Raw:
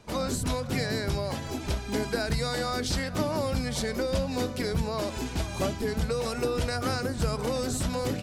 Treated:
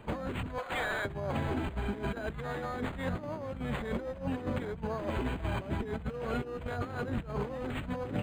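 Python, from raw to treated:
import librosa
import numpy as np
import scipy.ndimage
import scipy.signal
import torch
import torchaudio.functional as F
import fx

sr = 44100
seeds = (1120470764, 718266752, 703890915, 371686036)

y = fx.highpass(x, sr, hz=660.0, slope=24, at=(0.58, 1.05))
y = fx.over_compress(y, sr, threshold_db=-33.0, ratio=-0.5)
y = 10.0 ** (-21.5 / 20.0) * np.tanh(y / 10.0 ** (-21.5 / 20.0))
y = np.interp(np.arange(len(y)), np.arange(len(y))[::8], y[::8])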